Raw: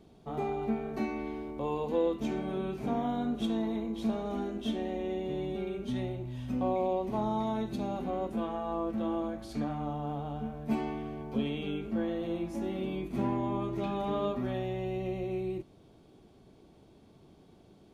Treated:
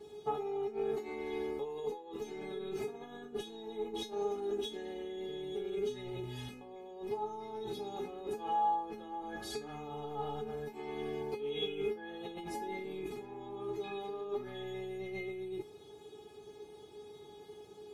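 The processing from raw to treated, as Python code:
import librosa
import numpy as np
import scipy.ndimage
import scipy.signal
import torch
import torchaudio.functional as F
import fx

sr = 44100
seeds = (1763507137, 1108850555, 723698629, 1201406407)

y = scipy.signal.sosfilt(scipy.signal.butter(2, 98.0, 'highpass', fs=sr, output='sos'), x)
y = fx.over_compress(y, sr, threshold_db=-39.0, ratio=-1.0)
y = fx.comb_fb(y, sr, f0_hz=420.0, decay_s=0.2, harmonics='all', damping=0.0, mix_pct=100)
y = F.gain(torch.from_numpy(y), 17.0).numpy()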